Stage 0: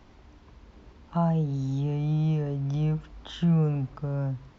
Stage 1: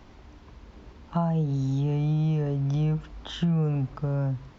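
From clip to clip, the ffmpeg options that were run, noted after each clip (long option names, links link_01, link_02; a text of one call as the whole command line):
ffmpeg -i in.wav -af "acompressor=threshold=-25dB:ratio=6,volume=3.5dB" out.wav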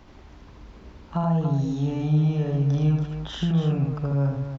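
ffmpeg -i in.wav -af "aecho=1:1:78.72|282.8:0.794|0.447" out.wav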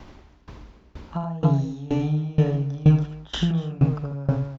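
ffmpeg -i in.wav -af "aeval=exprs='val(0)*pow(10,-22*if(lt(mod(2.1*n/s,1),2*abs(2.1)/1000),1-mod(2.1*n/s,1)/(2*abs(2.1)/1000),(mod(2.1*n/s,1)-2*abs(2.1)/1000)/(1-2*abs(2.1)/1000))/20)':channel_layout=same,volume=8dB" out.wav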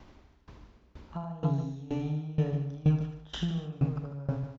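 ffmpeg -i in.wav -af "aecho=1:1:148:0.266,volume=-9dB" out.wav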